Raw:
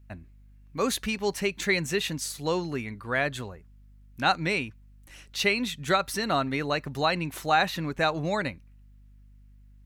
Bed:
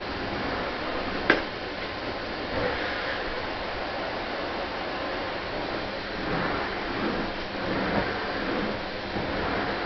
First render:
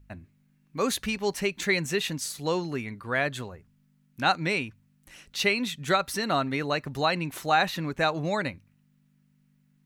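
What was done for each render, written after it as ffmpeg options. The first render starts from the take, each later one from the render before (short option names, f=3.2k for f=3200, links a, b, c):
-af "bandreject=f=50:t=h:w=4,bandreject=f=100:t=h:w=4"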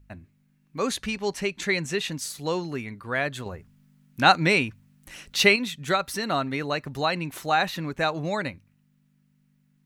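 -filter_complex "[0:a]asettb=1/sr,asplit=3[a][b][c];[a]atrim=end=0.784[d];[b]atrim=start=0.78:end=2.12,asetpts=PTS-STARTPTS,afade=t=in:d=0.004:c=qsin,afade=t=out:st=1.336:d=0.004:c=qsin,lowpass=10k[e];[c]atrim=start=2.116[f];[d][e]acrossfade=d=0.004:c1=hsin:c2=qsin[g];[g][f]acrossfade=d=0.004:c1=qsin:c2=hsin,asplit=3[h][i][j];[h]atrim=end=3.462[k];[i]atrim=start=3.458:end=5.562,asetpts=PTS-STARTPTS,volume=6.5dB[l];[j]atrim=start=5.558[m];[k][l]acrossfade=d=0.004:c1=hsin:c2=hsin[n];[n][m]acrossfade=d=0.004:c1=hsin:c2=hsin"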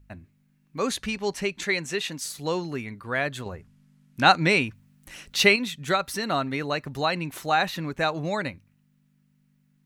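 -filter_complex "[0:a]asettb=1/sr,asplit=3[a][b][c];[a]atrim=end=1.644[d];[b]atrim=start=1.64:end=2.25,asetpts=PTS-STARTPTS,afade=t=in:d=0.004:c=qsin,afade=t=out:st=0.606:d=0.004:c=qsin,highpass=f=250:p=1[e];[c]atrim=start=2.246[f];[d][e]acrossfade=d=0.004:c1=hsin:c2=qsin[g];[g][f]acrossfade=d=0.004:c1=qsin:c2=hsin,asettb=1/sr,asplit=3[h][i][j];[h]atrim=end=3.434[k];[i]atrim=start=3.43:end=4.63,asetpts=PTS-STARTPTS,afade=t=in:d=0.004:c=qsin,afade=t=out:st=1.196:d=0.004:c=qsin,lowpass=12k[l];[j]atrim=start=4.626[m];[k][l]acrossfade=d=0.004:c1=hsin:c2=qsin[n];[n][m]acrossfade=d=0.004:c1=qsin:c2=hsin"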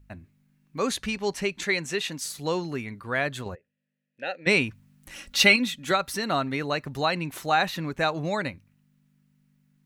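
-filter_complex "[0:a]asplit=3[a][b][c];[a]afade=t=out:st=3.54:d=0.02[d];[b]asplit=3[e][f][g];[e]bandpass=f=530:t=q:w=8,volume=0dB[h];[f]bandpass=f=1.84k:t=q:w=8,volume=-6dB[i];[g]bandpass=f=2.48k:t=q:w=8,volume=-9dB[j];[h][i][j]amix=inputs=3:normalize=0,afade=t=in:st=3.54:d=0.02,afade=t=out:st=4.46:d=0.02[k];[c]afade=t=in:st=4.46:d=0.02[l];[d][k][l]amix=inputs=3:normalize=0,asettb=1/sr,asplit=3[m][n][o];[m]atrim=end=5.154[p];[n]atrim=start=5.15:end=5.91,asetpts=PTS-STARTPTS,afade=t=in:d=0.004:c=qsin,afade=t=out:st=0.756:d=0.004:c=qsin,aecho=1:1:3.6:0.65,atrim=end_sample=33516[q];[o]atrim=start=5.906[r];[p][q]acrossfade=d=0.004:c1=hsin:c2=qsin[s];[s][r]acrossfade=d=0.004:c1=qsin:c2=hsin"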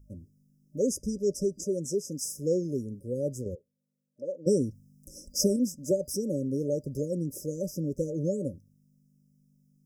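-af "afftfilt=real='re*(1-between(b*sr/4096,600,4900))':imag='im*(1-between(b*sr/4096,600,4900))':win_size=4096:overlap=0.75,adynamicequalizer=threshold=0.00708:dfrequency=720:dqfactor=0.87:tfrequency=720:tqfactor=0.87:attack=5:release=100:ratio=0.375:range=1.5:mode=boostabove:tftype=bell"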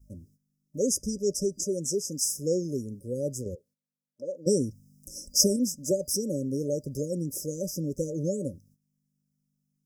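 -af "agate=range=-13dB:threshold=-59dB:ratio=16:detection=peak,highshelf=f=3.9k:t=q:w=1.5:g=6"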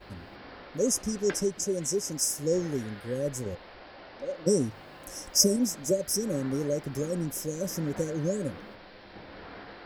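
-filter_complex "[1:a]volume=-17dB[a];[0:a][a]amix=inputs=2:normalize=0"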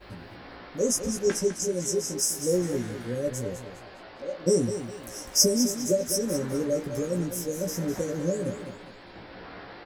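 -filter_complex "[0:a]asplit=2[a][b];[b]adelay=17,volume=-4.5dB[c];[a][c]amix=inputs=2:normalize=0,aecho=1:1:204|408|612|816:0.316|0.104|0.0344|0.0114"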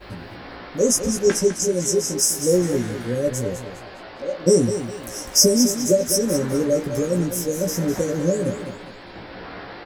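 -af "volume=7dB,alimiter=limit=-1dB:level=0:latency=1"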